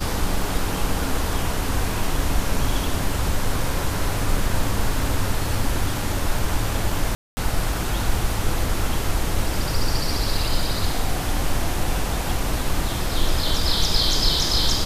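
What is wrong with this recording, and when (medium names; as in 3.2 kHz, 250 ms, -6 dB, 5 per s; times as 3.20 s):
7.15–7.37 s: dropout 220 ms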